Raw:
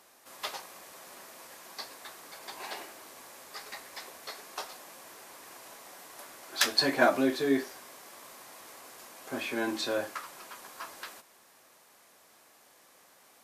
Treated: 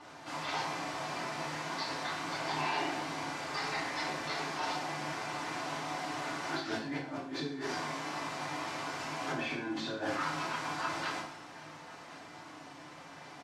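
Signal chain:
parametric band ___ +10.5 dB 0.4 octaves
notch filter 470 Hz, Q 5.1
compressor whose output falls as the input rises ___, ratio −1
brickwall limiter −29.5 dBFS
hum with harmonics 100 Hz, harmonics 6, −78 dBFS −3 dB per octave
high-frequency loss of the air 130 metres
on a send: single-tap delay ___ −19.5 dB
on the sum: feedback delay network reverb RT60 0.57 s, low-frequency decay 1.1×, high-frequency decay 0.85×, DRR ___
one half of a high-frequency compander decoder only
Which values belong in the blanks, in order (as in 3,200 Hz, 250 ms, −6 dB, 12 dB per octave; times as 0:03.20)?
150 Hz, −42 dBFS, 1,072 ms, −7 dB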